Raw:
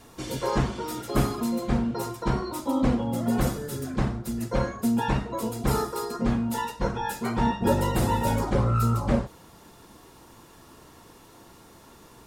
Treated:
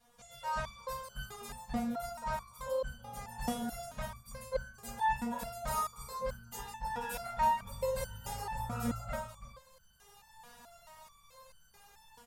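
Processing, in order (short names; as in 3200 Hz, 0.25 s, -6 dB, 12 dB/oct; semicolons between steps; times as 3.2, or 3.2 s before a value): AGC gain up to 11.5 dB; Chebyshev band-stop 190–550 Hz, order 2; echo 0.329 s -7.5 dB; stepped resonator 4.6 Hz 240–1500 Hz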